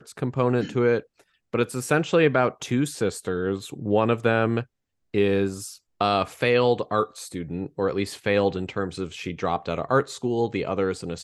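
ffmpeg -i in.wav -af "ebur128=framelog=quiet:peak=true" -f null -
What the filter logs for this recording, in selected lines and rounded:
Integrated loudness:
  I:         -24.7 LUFS
  Threshold: -34.9 LUFS
Loudness range:
  LRA:         2.7 LU
  Threshold: -44.9 LUFS
  LRA low:   -26.5 LUFS
  LRA high:  -23.7 LUFS
True peak:
  Peak:       -6.8 dBFS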